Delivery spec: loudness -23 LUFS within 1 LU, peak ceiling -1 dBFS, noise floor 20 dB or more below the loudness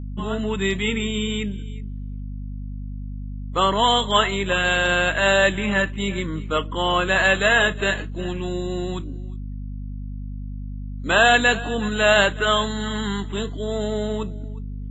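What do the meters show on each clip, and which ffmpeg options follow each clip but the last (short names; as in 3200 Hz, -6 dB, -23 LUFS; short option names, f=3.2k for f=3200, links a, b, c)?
hum 50 Hz; harmonics up to 250 Hz; hum level -28 dBFS; loudness -21.0 LUFS; peak -2.5 dBFS; loudness target -23.0 LUFS
-> -af "bandreject=f=50:t=h:w=6,bandreject=f=100:t=h:w=6,bandreject=f=150:t=h:w=6,bandreject=f=200:t=h:w=6,bandreject=f=250:t=h:w=6"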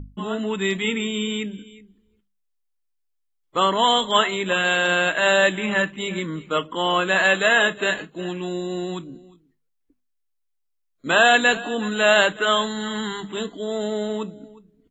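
hum none; loudness -21.0 LUFS; peak -2.5 dBFS; loudness target -23.0 LUFS
-> -af "volume=-2dB"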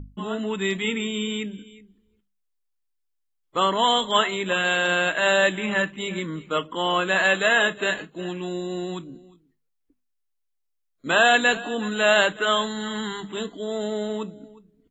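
loudness -23.0 LUFS; peak -4.5 dBFS; noise floor -75 dBFS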